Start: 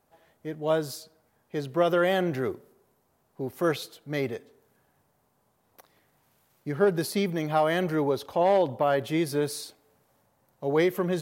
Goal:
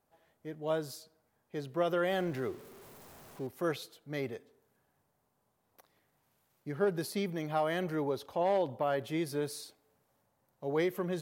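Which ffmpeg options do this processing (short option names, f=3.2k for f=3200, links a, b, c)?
-filter_complex "[0:a]asettb=1/sr,asplit=3[a][b][c];[a]atrim=end=2.124[d];[b]atrim=start=2.12:end=3.47,asetpts=PTS-STARTPTS,afade=t=in:d=0.004:c=qsin,afade=t=out:st=1.346:d=0.004:c=qsin,aeval=exprs='val(0)+0.5*0.00891*sgn(val(0))':c=same[e];[c]atrim=start=3.466[f];[d][e]acrossfade=d=0.004:c1=hsin:c2=qsin[g];[g][f]acrossfade=d=0.004:c1=qsin:c2=hsin,volume=-7.5dB"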